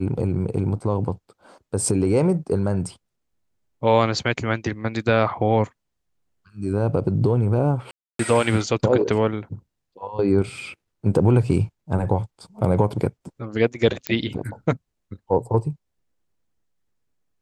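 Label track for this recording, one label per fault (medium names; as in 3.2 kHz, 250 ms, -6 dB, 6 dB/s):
7.910000	8.190000	dropout 283 ms
14.070000	14.070000	pop -8 dBFS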